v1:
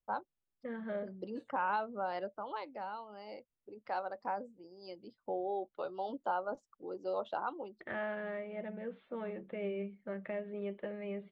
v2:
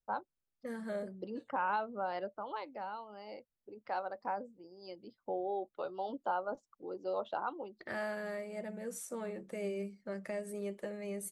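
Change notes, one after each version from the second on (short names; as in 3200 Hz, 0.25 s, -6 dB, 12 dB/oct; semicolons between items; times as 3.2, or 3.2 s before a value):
second voice: remove steep low-pass 3600 Hz 72 dB/oct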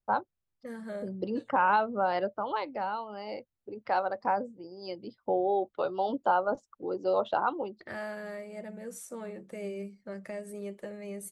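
first voice +9.0 dB; master: add bell 92 Hz +6.5 dB 1.1 oct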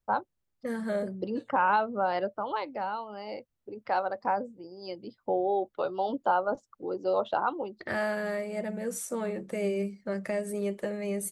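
second voice +8.0 dB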